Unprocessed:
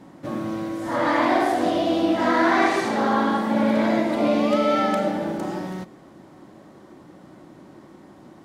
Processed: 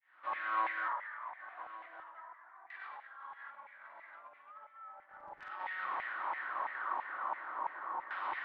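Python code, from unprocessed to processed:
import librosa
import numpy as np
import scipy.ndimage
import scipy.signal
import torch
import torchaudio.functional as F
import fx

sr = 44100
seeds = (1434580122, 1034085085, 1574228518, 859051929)

p1 = fx.fade_in_head(x, sr, length_s=2.42)
p2 = scipy.signal.sosfilt(scipy.signal.butter(4, 3900.0, 'lowpass', fs=sr, output='sos'), p1)
p3 = fx.low_shelf(p2, sr, hz=430.0, db=-10.0)
p4 = fx.hum_notches(p3, sr, base_hz=60, count=5)
p5 = fx.over_compress(p4, sr, threshold_db=-46.0, ratio=-1.0)
p6 = fx.filter_lfo_highpass(p5, sr, shape='saw_down', hz=3.0, low_hz=890.0, high_hz=2100.0, q=5.0)
p7 = fx.dmg_crackle(p6, sr, seeds[0], per_s=fx.line((5.05, 38.0), (5.48, 180.0)), level_db=-36.0, at=(5.05, 5.48), fade=0.02)
p8 = fx.filter_lfo_lowpass(p7, sr, shape='saw_down', hz=0.37, low_hz=860.0, high_hz=3000.0, q=0.99)
p9 = p8 + fx.echo_single(p8, sr, ms=1156, db=-16.5, dry=0)
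y = F.gain(torch.from_numpy(p9), -2.0).numpy()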